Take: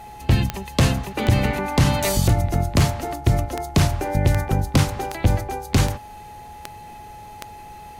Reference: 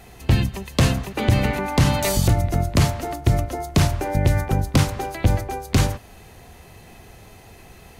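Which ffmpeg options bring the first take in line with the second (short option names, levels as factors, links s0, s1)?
-af "adeclick=t=4,bandreject=f=840:w=30"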